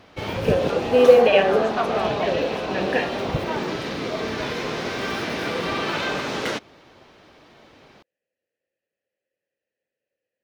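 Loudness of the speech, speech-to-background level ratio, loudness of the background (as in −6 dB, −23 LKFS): −20.0 LKFS, 6.0 dB, −26.0 LKFS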